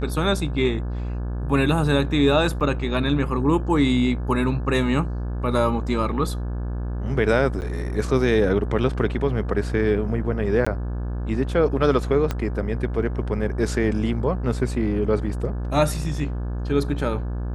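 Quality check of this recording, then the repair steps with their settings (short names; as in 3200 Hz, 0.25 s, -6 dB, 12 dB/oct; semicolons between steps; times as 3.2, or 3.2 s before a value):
buzz 60 Hz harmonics 29 -27 dBFS
2.6–2.61 gap 7 ms
7.61–7.62 gap 9.7 ms
10.65–10.66 gap 15 ms
12.31 pop -11 dBFS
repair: de-click; de-hum 60 Hz, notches 29; interpolate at 2.6, 7 ms; interpolate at 7.61, 9.7 ms; interpolate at 10.65, 15 ms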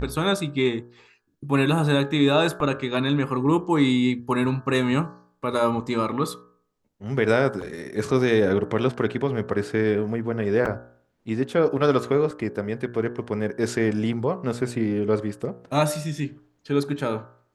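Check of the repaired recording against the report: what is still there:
12.31 pop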